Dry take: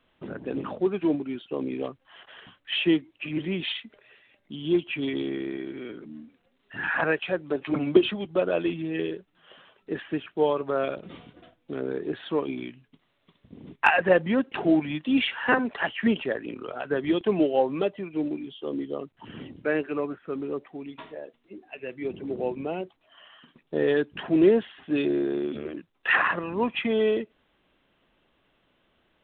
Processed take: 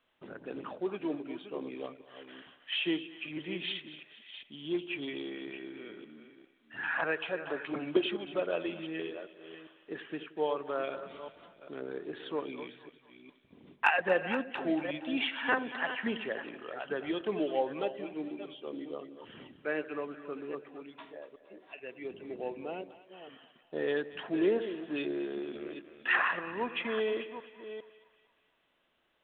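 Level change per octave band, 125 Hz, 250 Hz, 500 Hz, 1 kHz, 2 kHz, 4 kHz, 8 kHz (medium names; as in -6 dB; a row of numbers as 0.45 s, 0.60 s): -13.5 dB, -10.5 dB, -8.0 dB, -6.0 dB, -5.5 dB, -5.0 dB, no reading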